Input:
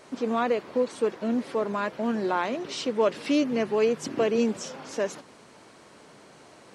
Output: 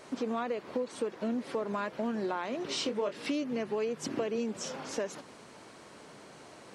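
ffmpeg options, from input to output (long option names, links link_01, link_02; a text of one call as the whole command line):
ffmpeg -i in.wav -filter_complex "[0:a]acompressor=threshold=-30dB:ratio=6,asettb=1/sr,asplit=3[link_01][link_02][link_03];[link_01]atrim=end=2.674[link_04];[link_02]atrim=start=2.67:end=3.27,asetpts=PTS-STARTPTS,afade=type=in:duration=0.004:curve=qsin,afade=type=out:start_time=0.596:duration=0.004:curve=qsin,asplit=2[link_05][link_06];[link_06]adelay=25,volume=-7dB[link_07];[link_05][link_07]amix=inputs=2:normalize=0,atrim=end_sample=26460[link_08];[link_03]atrim=start=3.266[link_09];[link_04][link_08]acrossfade=duration=0.004:curve1=hsin:curve2=qsin[link_10];[link_10][link_09]acrossfade=duration=0.004:curve1=qsin:curve2=hsin" out.wav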